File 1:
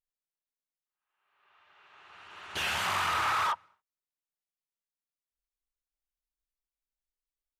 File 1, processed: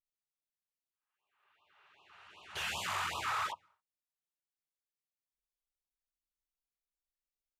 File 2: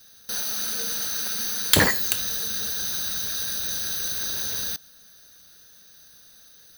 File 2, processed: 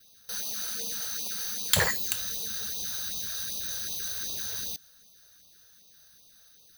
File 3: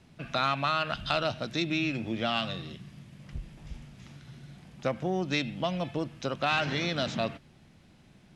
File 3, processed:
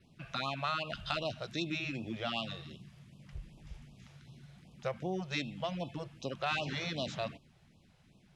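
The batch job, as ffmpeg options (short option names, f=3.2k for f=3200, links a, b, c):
-af "adynamicequalizer=threshold=0.00251:dfrequency=7200:dqfactor=5.3:tfrequency=7200:tqfactor=5.3:attack=5:release=100:ratio=0.375:range=2.5:mode=boostabove:tftype=bell,afftfilt=real='re*(1-between(b*sr/1024,230*pow(1800/230,0.5+0.5*sin(2*PI*2.6*pts/sr))/1.41,230*pow(1800/230,0.5+0.5*sin(2*PI*2.6*pts/sr))*1.41))':imag='im*(1-between(b*sr/1024,230*pow(1800/230,0.5+0.5*sin(2*PI*2.6*pts/sr))/1.41,230*pow(1800/230,0.5+0.5*sin(2*PI*2.6*pts/sr))*1.41))':win_size=1024:overlap=0.75,volume=-6dB"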